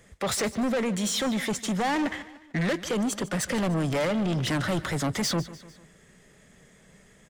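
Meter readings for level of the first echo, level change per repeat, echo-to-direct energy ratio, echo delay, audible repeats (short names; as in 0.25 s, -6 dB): -17.0 dB, -6.0 dB, -16.0 dB, 0.149 s, 3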